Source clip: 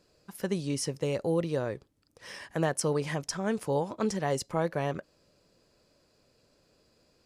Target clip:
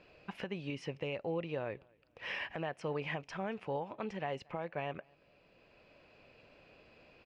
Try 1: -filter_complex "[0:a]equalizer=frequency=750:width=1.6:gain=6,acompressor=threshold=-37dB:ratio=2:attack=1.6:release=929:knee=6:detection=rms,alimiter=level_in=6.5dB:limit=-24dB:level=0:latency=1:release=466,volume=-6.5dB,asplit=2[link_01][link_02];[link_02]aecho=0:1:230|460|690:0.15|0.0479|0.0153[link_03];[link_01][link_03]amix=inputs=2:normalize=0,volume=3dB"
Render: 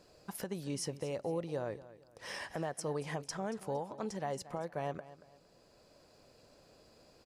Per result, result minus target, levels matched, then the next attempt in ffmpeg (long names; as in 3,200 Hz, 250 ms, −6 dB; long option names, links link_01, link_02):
echo-to-direct +12 dB; 2,000 Hz band −5.5 dB
-filter_complex "[0:a]equalizer=frequency=750:width=1.6:gain=6,acompressor=threshold=-37dB:ratio=2:attack=1.6:release=929:knee=6:detection=rms,alimiter=level_in=6.5dB:limit=-24dB:level=0:latency=1:release=466,volume=-6.5dB,asplit=2[link_01][link_02];[link_02]aecho=0:1:230|460:0.0376|0.012[link_03];[link_01][link_03]amix=inputs=2:normalize=0,volume=3dB"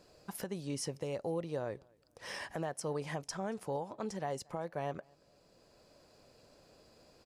2,000 Hz band −5.5 dB
-filter_complex "[0:a]lowpass=frequency=2600:width_type=q:width=4.4,equalizer=frequency=750:width=1.6:gain=6,acompressor=threshold=-37dB:ratio=2:attack=1.6:release=929:knee=6:detection=rms,alimiter=level_in=6.5dB:limit=-24dB:level=0:latency=1:release=466,volume=-6.5dB,asplit=2[link_01][link_02];[link_02]aecho=0:1:230|460:0.0376|0.012[link_03];[link_01][link_03]amix=inputs=2:normalize=0,volume=3dB"